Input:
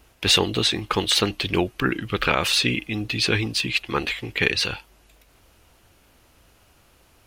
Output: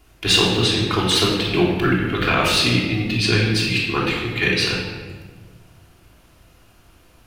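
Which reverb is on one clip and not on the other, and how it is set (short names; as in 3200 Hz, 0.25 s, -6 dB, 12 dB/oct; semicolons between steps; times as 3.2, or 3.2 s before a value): shoebox room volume 1400 m³, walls mixed, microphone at 3.2 m; gain -2.5 dB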